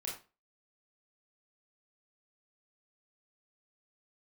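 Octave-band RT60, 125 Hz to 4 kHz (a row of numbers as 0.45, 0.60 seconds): 0.30, 0.35, 0.35, 0.30, 0.30, 0.25 seconds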